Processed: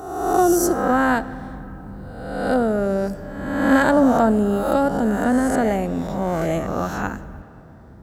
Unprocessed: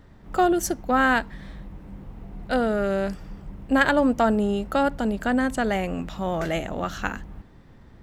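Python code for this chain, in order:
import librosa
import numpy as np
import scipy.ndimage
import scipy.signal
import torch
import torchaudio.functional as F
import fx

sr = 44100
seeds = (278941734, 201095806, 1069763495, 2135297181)

y = fx.spec_swells(x, sr, rise_s=1.13)
y = scipy.signal.sosfilt(scipy.signal.butter(2, 54.0, 'highpass', fs=sr, output='sos'), y)
y = fx.peak_eq(y, sr, hz=2800.0, db=-13.5, octaves=1.9)
y = fx.rev_freeverb(y, sr, rt60_s=3.1, hf_ratio=0.65, predelay_ms=20, drr_db=16.0)
y = y * 10.0 ** (4.0 / 20.0)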